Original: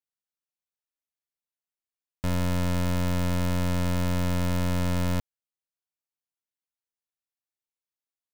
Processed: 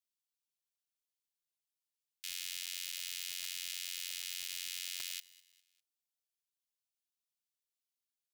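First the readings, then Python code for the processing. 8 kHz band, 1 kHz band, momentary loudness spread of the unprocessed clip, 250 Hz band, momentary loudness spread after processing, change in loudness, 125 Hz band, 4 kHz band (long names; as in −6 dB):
+1.0 dB, −32.0 dB, 3 LU, below −40 dB, 3 LU, −11.5 dB, below −40 dB, +0.5 dB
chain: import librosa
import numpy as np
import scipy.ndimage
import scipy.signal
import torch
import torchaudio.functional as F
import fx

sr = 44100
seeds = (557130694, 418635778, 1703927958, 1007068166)

y = scipy.signal.sosfilt(scipy.signal.cheby2(4, 60, 790.0, 'highpass', fs=sr, output='sos'), x)
y = fx.echo_feedback(y, sr, ms=201, feedback_pct=41, wet_db=-21)
y = fx.buffer_crackle(y, sr, first_s=0.32, period_s=0.26, block=128, kind='repeat')
y = F.gain(torch.from_numpy(y), 1.0).numpy()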